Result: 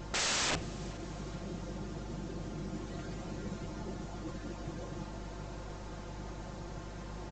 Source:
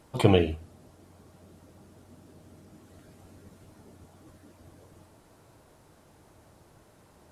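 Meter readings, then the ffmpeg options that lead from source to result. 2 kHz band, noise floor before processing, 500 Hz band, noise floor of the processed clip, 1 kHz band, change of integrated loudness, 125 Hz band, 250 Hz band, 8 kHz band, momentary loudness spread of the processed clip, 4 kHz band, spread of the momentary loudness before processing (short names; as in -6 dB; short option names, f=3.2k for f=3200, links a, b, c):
+2.5 dB, -59 dBFS, -11.5 dB, -44 dBFS, -2.5 dB, -15.0 dB, -7.5 dB, -6.5 dB, +14.5 dB, 13 LU, +2.5 dB, 15 LU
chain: -filter_complex "[0:a]aecho=1:1:5.7:0.85,aeval=exprs='val(0)+0.002*(sin(2*PI*50*n/s)+sin(2*PI*2*50*n/s)/2+sin(2*PI*3*50*n/s)/3+sin(2*PI*4*50*n/s)/4+sin(2*PI*5*50*n/s)/5)':c=same,aresample=16000,aeval=exprs='(mod(66.8*val(0)+1,2)-1)/66.8':c=same,aresample=44100,asplit=6[a][b][c][d][e][f];[b]adelay=422,afreqshift=-48,volume=-21dB[g];[c]adelay=844,afreqshift=-96,volume=-25.7dB[h];[d]adelay=1266,afreqshift=-144,volume=-30.5dB[i];[e]adelay=1688,afreqshift=-192,volume=-35.2dB[j];[f]adelay=2110,afreqshift=-240,volume=-39.9dB[k];[a][g][h][i][j][k]amix=inputs=6:normalize=0,volume=9.5dB"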